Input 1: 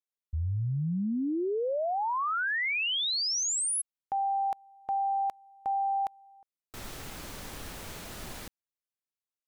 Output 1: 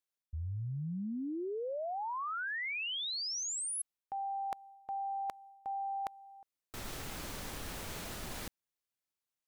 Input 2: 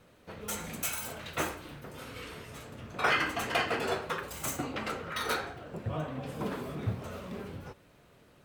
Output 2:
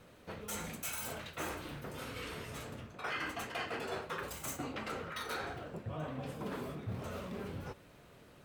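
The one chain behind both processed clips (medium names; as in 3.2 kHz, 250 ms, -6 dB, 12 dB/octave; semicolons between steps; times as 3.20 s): reverse; compression 4:1, threshold -40 dBFS; reverse; trim +1.5 dB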